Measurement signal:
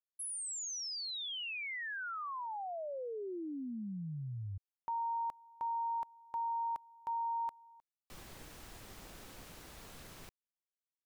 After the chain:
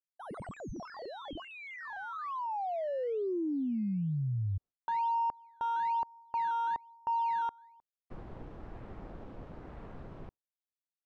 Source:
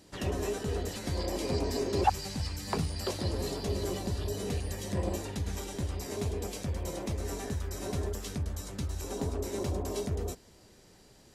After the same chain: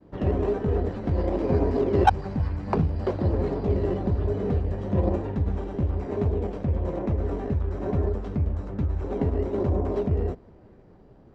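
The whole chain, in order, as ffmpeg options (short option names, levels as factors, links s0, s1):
-filter_complex "[0:a]agate=range=0.0224:threshold=0.00158:ratio=3:release=227:detection=peak,asplit=2[s0][s1];[s1]acrusher=samples=13:mix=1:aa=0.000001:lfo=1:lforange=13:lforate=1.1,volume=0.596[s2];[s0][s2]amix=inputs=2:normalize=0,adynamicsmooth=sensitivity=0.5:basefreq=1200,volume=1.78"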